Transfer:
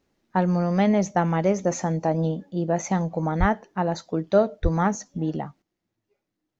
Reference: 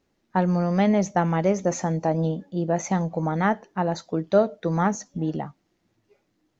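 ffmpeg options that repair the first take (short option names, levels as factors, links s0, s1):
-filter_complex "[0:a]asplit=3[s0][s1][s2];[s0]afade=t=out:st=3.39:d=0.02[s3];[s1]highpass=f=140:w=0.5412,highpass=f=140:w=1.3066,afade=t=in:st=3.39:d=0.02,afade=t=out:st=3.51:d=0.02[s4];[s2]afade=t=in:st=3.51:d=0.02[s5];[s3][s4][s5]amix=inputs=3:normalize=0,asplit=3[s6][s7][s8];[s6]afade=t=out:st=4.62:d=0.02[s9];[s7]highpass=f=140:w=0.5412,highpass=f=140:w=1.3066,afade=t=in:st=4.62:d=0.02,afade=t=out:st=4.74:d=0.02[s10];[s8]afade=t=in:st=4.74:d=0.02[s11];[s9][s10][s11]amix=inputs=3:normalize=0,asetnsamples=n=441:p=0,asendcmd='5.62 volume volume 11dB',volume=1"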